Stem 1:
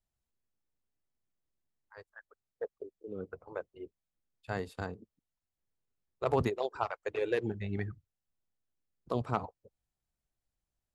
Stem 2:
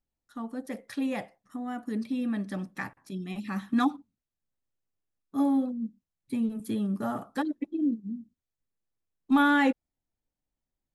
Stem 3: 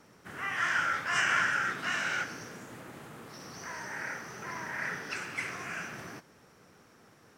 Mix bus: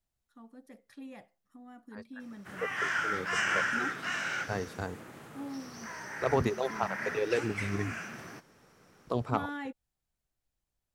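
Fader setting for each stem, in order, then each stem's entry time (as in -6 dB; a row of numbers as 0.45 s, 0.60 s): +1.5 dB, -16.0 dB, -2.0 dB; 0.00 s, 0.00 s, 2.20 s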